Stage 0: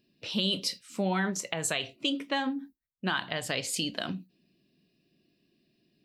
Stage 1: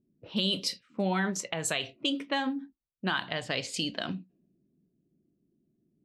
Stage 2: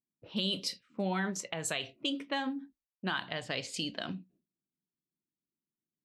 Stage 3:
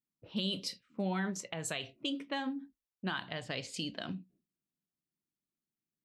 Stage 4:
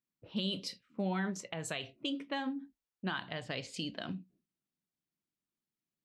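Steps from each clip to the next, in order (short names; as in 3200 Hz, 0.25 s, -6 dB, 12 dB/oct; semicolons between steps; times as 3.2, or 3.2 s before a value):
low-pass opened by the level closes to 340 Hz, open at -27 dBFS
gate with hold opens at -60 dBFS; gain -4 dB
low shelf 220 Hz +5.5 dB; gain -3.5 dB
high shelf 6000 Hz -6 dB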